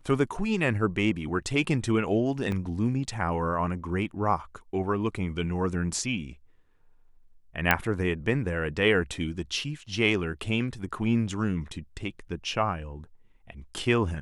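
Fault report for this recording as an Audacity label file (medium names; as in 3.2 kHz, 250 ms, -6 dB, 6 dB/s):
2.520000	2.520000	dropout 2.2 ms
7.710000	7.710000	pop -6 dBFS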